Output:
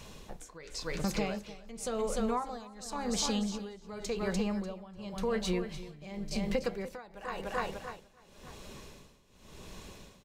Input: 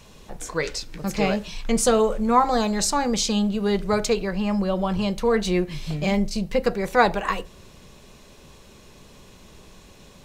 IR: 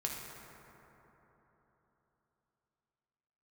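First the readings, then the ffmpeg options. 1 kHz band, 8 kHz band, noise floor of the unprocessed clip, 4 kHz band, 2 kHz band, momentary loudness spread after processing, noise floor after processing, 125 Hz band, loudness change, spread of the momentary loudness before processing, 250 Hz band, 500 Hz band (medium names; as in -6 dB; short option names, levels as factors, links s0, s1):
-15.0 dB, -11.5 dB, -49 dBFS, -10.0 dB, -13.0 dB, 18 LU, -60 dBFS, -11.5 dB, -12.5 dB, 9 LU, -11.5 dB, -12.5 dB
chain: -af "aecho=1:1:296|592|888|1184|1480:0.355|0.16|0.0718|0.0323|0.0145,acompressor=threshold=0.0398:ratio=6,tremolo=f=0.92:d=0.89"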